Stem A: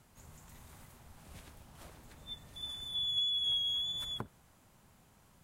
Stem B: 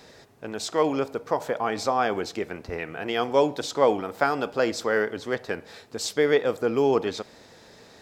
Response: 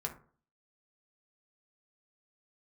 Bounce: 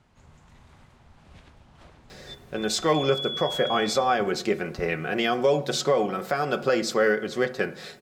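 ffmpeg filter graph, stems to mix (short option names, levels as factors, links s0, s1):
-filter_complex "[0:a]lowpass=4300,volume=1.33[s0];[1:a]equalizer=f=900:t=o:w=0.29:g=-9,aecho=1:1:5.4:0.53,adelay=2100,volume=1.12,asplit=2[s1][s2];[s2]volume=0.562[s3];[2:a]atrim=start_sample=2205[s4];[s3][s4]afir=irnorm=-1:irlink=0[s5];[s0][s1][s5]amix=inputs=3:normalize=0,alimiter=limit=0.266:level=0:latency=1:release=298"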